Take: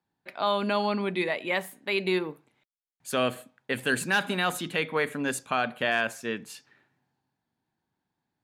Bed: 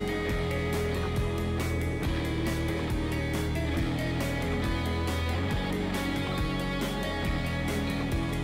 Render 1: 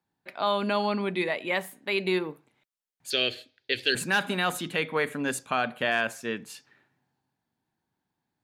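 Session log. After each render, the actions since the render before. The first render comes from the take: 3.1–3.95 EQ curve 110 Hz 0 dB, 160 Hz -24 dB, 370 Hz +3 dB, 620 Hz -8 dB, 1100 Hz -18 dB, 1600 Hz -3 dB, 4500 Hz +15 dB, 8400 Hz -12 dB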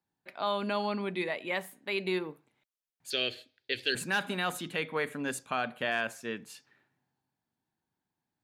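gain -5 dB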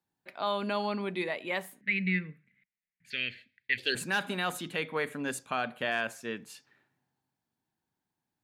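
1.81–3.78 EQ curve 120 Hz 0 dB, 190 Hz +11 dB, 320 Hz -14 dB, 550 Hz -13 dB, 850 Hz -29 dB, 1300 Hz -9 dB, 2000 Hz +12 dB, 3300 Hz -8 dB, 8900 Hz -18 dB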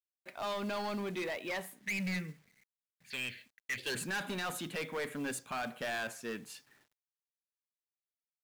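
soft clip -32 dBFS, distortion -7 dB; companded quantiser 6-bit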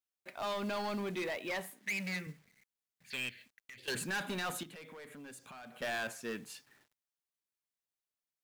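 1.7–2.27 HPF 230 Hz; 3.29–3.88 compressor 10:1, threshold -50 dBFS; 4.63–5.82 compressor, threshold -49 dBFS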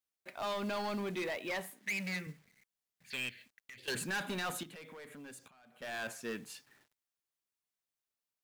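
5.48–6.11 fade in quadratic, from -14.5 dB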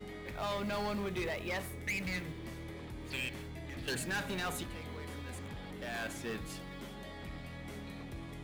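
add bed -15.5 dB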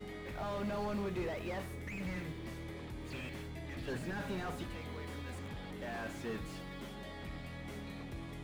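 slew limiter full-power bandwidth 12 Hz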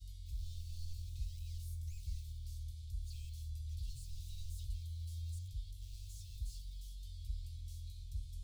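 inverse Chebyshev band-stop 200–1800 Hz, stop band 50 dB; low shelf 170 Hz +8.5 dB

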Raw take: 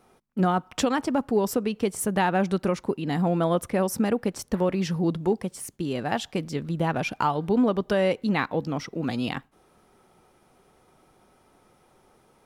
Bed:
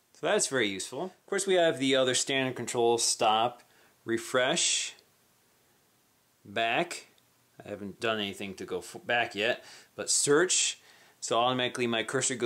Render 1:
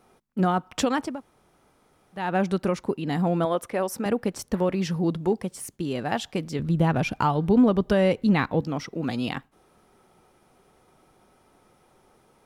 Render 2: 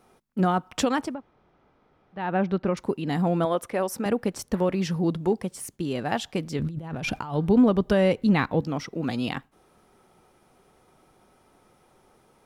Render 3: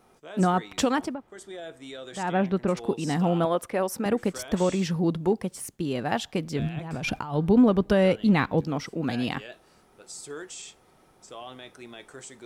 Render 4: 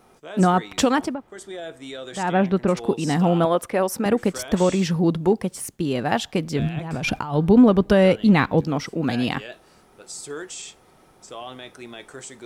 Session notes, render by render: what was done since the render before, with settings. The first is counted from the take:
1.11–2.24 room tone, crossfade 0.24 s; 3.45–4.06 tone controls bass -12 dB, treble -3 dB; 6.59–8.61 low shelf 180 Hz +11 dB
1.14–2.77 air absorption 250 m; 6.58–7.34 negative-ratio compressor -32 dBFS
add bed -15 dB
gain +5 dB

